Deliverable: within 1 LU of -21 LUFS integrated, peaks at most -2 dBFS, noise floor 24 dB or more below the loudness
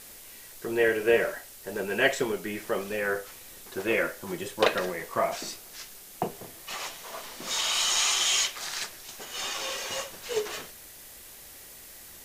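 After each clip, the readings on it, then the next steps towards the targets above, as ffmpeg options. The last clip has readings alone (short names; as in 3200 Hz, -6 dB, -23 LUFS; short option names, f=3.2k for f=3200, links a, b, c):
noise floor -48 dBFS; noise floor target -53 dBFS; loudness -28.5 LUFS; peak -5.0 dBFS; loudness target -21.0 LUFS
-> -af "afftdn=nr=6:nf=-48"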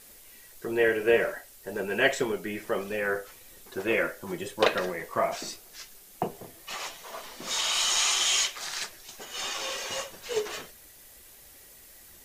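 noise floor -52 dBFS; noise floor target -53 dBFS
-> -af "afftdn=nr=6:nf=-52"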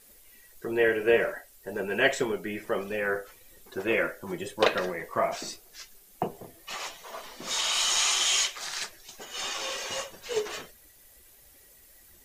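noise floor -56 dBFS; loudness -28.5 LUFS; peak -5.0 dBFS; loudness target -21.0 LUFS
-> -af "volume=7.5dB,alimiter=limit=-2dB:level=0:latency=1"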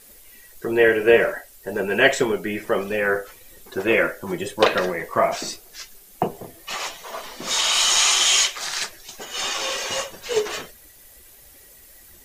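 loudness -21.0 LUFS; peak -2.0 dBFS; noise floor -49 dBFS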